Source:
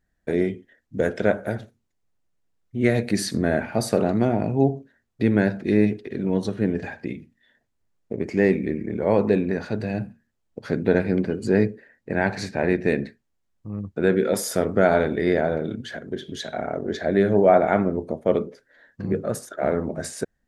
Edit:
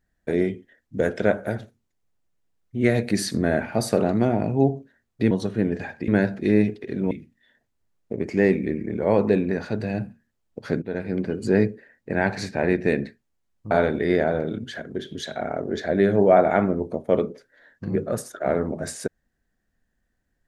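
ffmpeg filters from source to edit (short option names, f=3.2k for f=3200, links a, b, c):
-filter_complex "[0:a]asplit=6[a][b][c][d][e][f];[a]atrim=end=5.312[g];[b]atrim=start=6.338:end=7.112[h];[c]atrim=start=5.308:end=6.342[i];[d]atrim=start=7.108:end=10.82,asetpts=PTS-STARTPTS,afade=t=out:st=3.708:d=0.004:c=hsin:silence=0.149624[j];[e]atrim=start=10.82:end=13.712,asetpts=PTS-STARTPTS,afade=t=in:d=0.59:silence=0.149624[k];[f]atrim=start=14.878[l];[g][h]acrossfade=d=0.004:c1=hsin:c2=hsin[m];[m][i]acrossfade=d=0.004:c1=hsin:c2=hsin[n];[j][k]concat=n=2:v=0:a=1[o];[n][o]acrossfade=d=0.004:c1=hsin:c2=hsin[p];[p][l]acrossfade=d=0.004:c1=hsin:c2=hsin"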